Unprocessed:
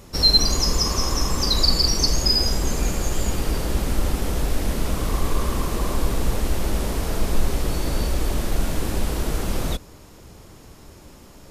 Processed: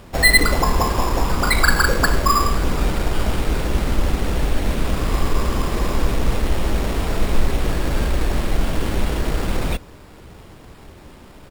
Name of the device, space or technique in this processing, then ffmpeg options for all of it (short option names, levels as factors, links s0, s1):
crushed at another speed: -af "asetrate=35280,aresample=44100,acrusher=samples=9:mix=1:aa=0.000001,asetrate=55125,aresample=44100,volume=1.41"